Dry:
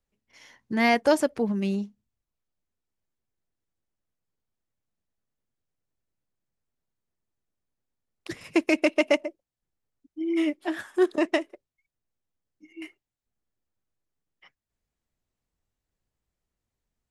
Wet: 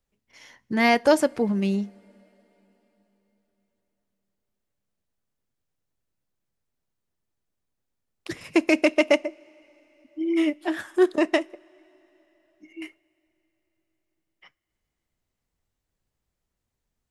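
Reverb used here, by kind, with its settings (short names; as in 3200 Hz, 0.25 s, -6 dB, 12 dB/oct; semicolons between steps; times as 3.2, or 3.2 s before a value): two-slope reverb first 0.24 s, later 4.1 s, from -21 dB, DRR 19.5 dB; gain +2.5 dB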